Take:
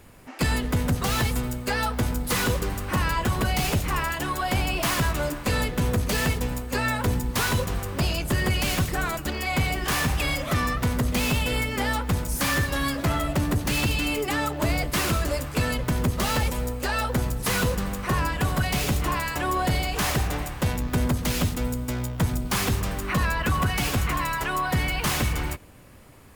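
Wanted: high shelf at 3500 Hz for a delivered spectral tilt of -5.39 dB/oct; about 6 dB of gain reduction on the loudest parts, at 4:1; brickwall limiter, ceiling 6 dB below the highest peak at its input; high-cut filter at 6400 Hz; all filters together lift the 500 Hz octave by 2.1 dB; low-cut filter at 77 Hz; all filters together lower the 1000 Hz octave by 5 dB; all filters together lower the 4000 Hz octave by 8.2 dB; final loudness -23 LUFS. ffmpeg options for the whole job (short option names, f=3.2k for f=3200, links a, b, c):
-af "highpass=77,lowpass=6.4k,equalizer=f=500:t=o:g=4.5,equalizer=f=1k:t=o:g=-7,highshelf=f=3.5k:g=-7.5,equalizer=f=4k:t=o:g=-5,acompressor=threshold=-27dB:ratio=4,volume=10dB,alimiter=limit=-13dB:level=0:latency=1"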